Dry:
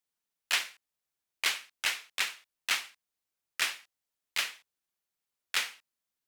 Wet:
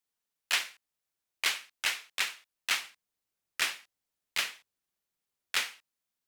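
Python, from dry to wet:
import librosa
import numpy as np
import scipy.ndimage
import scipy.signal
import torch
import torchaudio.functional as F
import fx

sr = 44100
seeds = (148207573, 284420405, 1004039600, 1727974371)

y = fx.low_shelf(x, sr, hz=410.0, db=4.5, at=(2.82, 5.63))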